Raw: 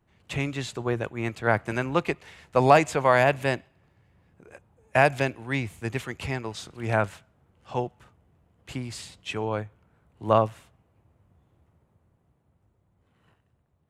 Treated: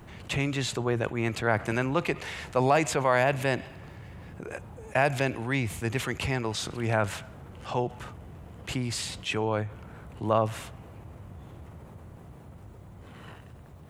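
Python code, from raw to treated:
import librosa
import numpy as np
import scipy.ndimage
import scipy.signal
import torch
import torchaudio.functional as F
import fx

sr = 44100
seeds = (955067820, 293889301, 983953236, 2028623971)

y = fx.env_flatten(x, sr, amount_pct=50)
y = y * librosa.db_to_amplitude(-7.0)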